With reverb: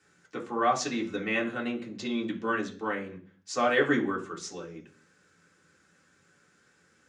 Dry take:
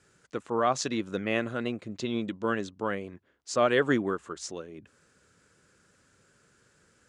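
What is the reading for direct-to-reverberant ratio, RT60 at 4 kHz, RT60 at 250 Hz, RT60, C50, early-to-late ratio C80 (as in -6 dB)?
-2.5 dB, 0.50 s, 0.65 s, 0.45 s, 11.5 dB, 17.0 dB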